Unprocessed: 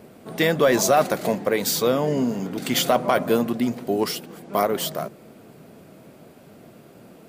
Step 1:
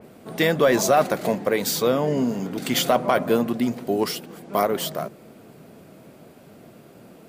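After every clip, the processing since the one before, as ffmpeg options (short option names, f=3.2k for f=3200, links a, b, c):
-af "adynamicequalizer=threshold=0.0178:dfrequency=3500:dqfactor=0.7:tfrequency=3500:tqfactor=0.7:attack=5:release=100:ratio=0.375:range=2:mode=cutabove:tftype=highshelf"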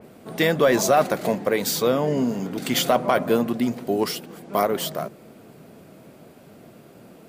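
-af anull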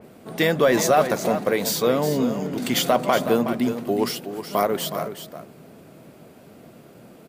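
-af "aecho=1:1:370:0.316"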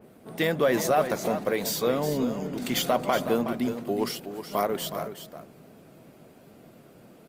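-af "volume=-5dB" -ar 48000 -c:a libopus -b:a 32k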